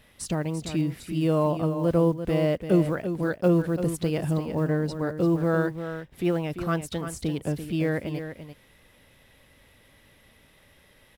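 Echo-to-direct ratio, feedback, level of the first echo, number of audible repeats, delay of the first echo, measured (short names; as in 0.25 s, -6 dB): -9.5 dB, no steady repeat, -9.5 dB, 1, 0.341 s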